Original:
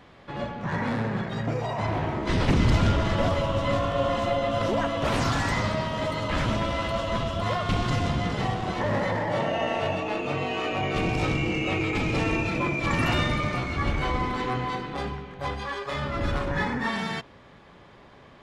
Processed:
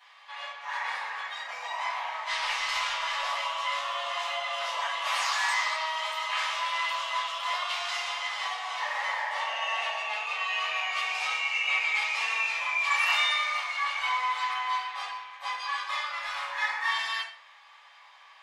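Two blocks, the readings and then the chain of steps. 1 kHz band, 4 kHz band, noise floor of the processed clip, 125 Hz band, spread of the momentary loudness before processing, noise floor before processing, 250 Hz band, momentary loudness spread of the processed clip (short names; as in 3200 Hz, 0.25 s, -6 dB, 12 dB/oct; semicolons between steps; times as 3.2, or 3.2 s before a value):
-0.5 dB, +4.0 dB, -54 dBFS, under -40 dB, 7 LU, -51 dBFS, under -40 dB, 9 LU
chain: inverse Chebyshev high-pass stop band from 370 Hz, stop band 50 dB; bell 1400 Hz -9.5 dB 0.29 oct; shoebox room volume 55 m³, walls mixed, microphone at 1.7 m; gain -4.5 dB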